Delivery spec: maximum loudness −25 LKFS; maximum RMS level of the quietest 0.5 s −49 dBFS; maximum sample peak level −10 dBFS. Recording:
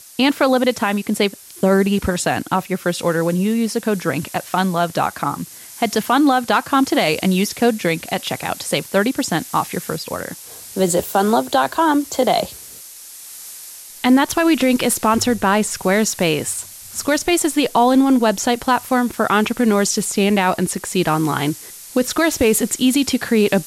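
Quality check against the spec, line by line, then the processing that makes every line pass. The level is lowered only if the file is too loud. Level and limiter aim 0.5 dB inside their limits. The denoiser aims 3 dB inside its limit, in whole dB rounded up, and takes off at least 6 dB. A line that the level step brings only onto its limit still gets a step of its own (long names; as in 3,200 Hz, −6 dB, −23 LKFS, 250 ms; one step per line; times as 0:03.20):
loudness −18.0 LKFS: out of spec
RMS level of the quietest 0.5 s −38 dBFS: out of spec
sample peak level −5.5 dBFS: out of spec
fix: broadband denoise 7 dB, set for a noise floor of −38 dBFS
level −7.5 dB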